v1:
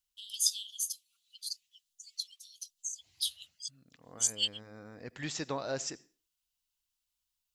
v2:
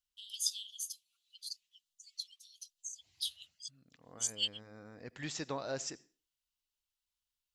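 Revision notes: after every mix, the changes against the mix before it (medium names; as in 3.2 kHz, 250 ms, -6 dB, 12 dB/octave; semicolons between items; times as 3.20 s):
first voice: add treble shelf 4.4 kHz -8.5 dB; second voice -3.0 dB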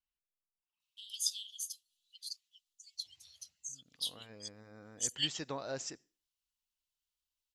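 first voice: entry +0.80 s; second voice: send -8.5 dB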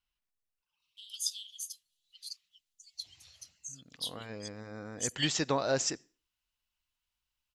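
second voice +10.5 dB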